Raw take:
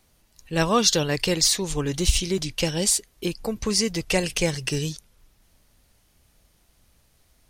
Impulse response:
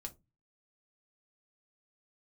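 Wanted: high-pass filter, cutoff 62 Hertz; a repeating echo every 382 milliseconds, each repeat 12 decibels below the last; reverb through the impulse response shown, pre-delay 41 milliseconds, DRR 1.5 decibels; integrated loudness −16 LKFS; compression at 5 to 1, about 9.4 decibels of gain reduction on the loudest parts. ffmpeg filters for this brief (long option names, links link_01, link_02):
-filter_complex "[0:a]highpass=62,acompressor=threshold=-26dB:ratio=5,aecho=1:1:382|764|1146:0.251|0.0628|0.0157,asplit=2[link_01][link_02];[1:a]atrim=start_sample=2205,adelay=41[link_03];[link_02][link_03]afir=irnorm=-1:irlink=0,volume=2.5dB[link_04];[link_01][link_04]amix=inputs=2:normalize=0,volume=11dB"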